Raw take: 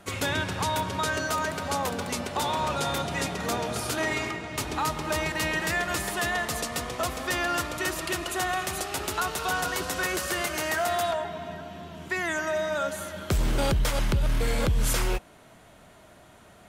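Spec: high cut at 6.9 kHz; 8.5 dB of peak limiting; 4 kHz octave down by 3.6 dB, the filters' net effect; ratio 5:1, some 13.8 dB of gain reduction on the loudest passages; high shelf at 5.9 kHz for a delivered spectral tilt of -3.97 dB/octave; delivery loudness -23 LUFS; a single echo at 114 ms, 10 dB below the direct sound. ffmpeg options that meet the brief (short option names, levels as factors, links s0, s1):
-af "lowpass=6900,equalizer=f=4000:t=o:g=-6,highshelf=f=5900:g=5,acompressor=threshold=0.0141:ratio=5,alimiter=level_in=2.66:limit=0.0631:level=0:latency=1,volume=0.376,aecho=1:1:114:0.316,volume=7.5"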